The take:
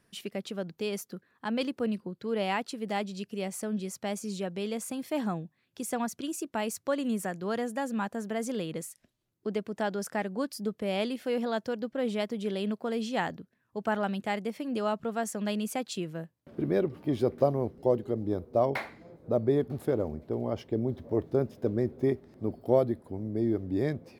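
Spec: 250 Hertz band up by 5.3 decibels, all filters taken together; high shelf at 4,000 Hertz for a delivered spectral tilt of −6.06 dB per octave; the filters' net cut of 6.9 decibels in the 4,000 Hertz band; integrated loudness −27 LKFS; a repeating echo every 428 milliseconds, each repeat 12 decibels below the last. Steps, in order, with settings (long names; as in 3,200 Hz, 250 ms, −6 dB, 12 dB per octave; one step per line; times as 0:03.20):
parametric band 250 Hz +6.5 dB
high-shelf EQ 4,000 Hz −4 dB
parametric band 4,000 Hz −7.5 dB
repeating echo 428 ms, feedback 25%, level −12 dB
level +2 dB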